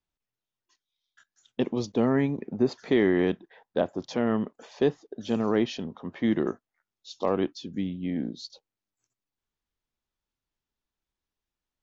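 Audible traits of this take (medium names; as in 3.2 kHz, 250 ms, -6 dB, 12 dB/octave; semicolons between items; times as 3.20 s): noise floor -90 dBFS; spectral tilt -6.0 dB/octave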